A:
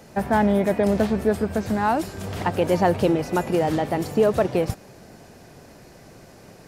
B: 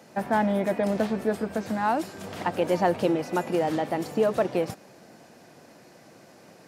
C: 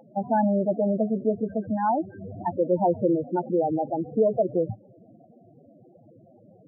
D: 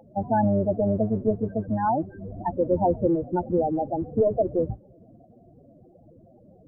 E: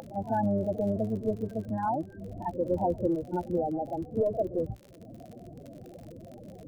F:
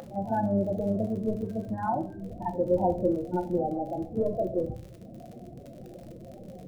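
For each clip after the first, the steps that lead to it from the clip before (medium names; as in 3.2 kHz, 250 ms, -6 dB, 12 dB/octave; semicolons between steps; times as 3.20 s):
high-pass 190 Hz 12 dB/octave; treble shelf 8.4 kHz -4 dB; band-stop 410 Hz, Q 12; trim -3 dB
peaking EQ 110 Hz +9.5 dB 0.35 oct; upward compressor, threshold -49 dBFS; loudest bins only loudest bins 8; trim +2 dB
octave divider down 1 oct, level -5 dB
upward compressor, threshold -28 dBFS; crackle 47 per s -34 dBFS; pre-echo 45 ms -13.5 dB; trim -6 dB
simulated room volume 370 m³, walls furnished, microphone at 0.99 m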